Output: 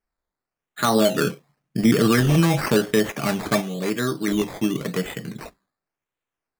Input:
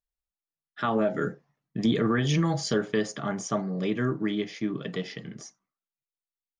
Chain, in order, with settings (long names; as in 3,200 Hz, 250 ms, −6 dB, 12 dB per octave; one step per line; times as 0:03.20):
0:03.61–0:04.28: low-shelf EQ 280 Hz −9 dB
sample-and-hold swept by an LFO 12×, swing 60% 0.93 Hz
level +7 dB